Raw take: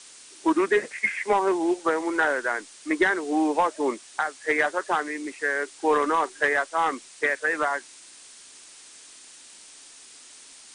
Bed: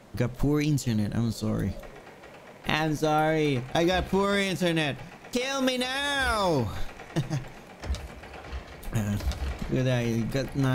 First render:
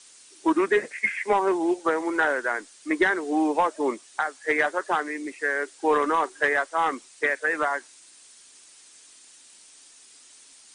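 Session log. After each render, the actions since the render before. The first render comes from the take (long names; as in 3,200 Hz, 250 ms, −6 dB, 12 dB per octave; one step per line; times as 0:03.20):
broadband denoise 6 dB, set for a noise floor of −48 dBFS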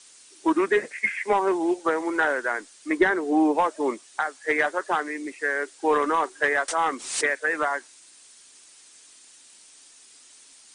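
0:02.97–0:03.58: tilt shelving filter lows +3.5 dB, about 1,400 Hz
0:06.68–0:07.37: background raised ahead of every attack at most 84 dB per second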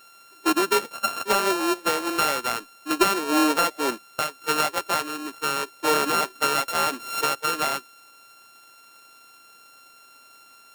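samples sorted by size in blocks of 32 samples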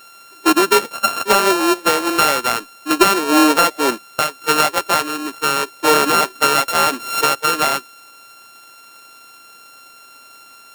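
level +8 dB
brickwall limiter −2 dBFS, peak gain reduction 1 dB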